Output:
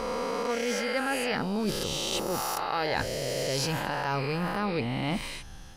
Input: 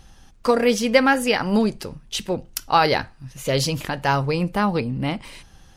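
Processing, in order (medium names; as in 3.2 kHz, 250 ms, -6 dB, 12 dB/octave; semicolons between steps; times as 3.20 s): reverse spectral sustain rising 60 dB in 1.57 s; reverse; compression 10:1, threshold -26 dBFS, peak gain reduction 18.5 dB; reverse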